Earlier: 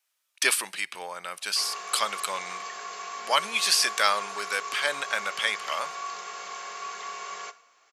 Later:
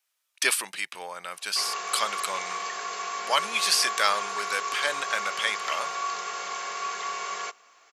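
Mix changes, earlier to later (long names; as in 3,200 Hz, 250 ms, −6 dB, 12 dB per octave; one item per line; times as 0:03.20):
background +7.0 dB
reverb: off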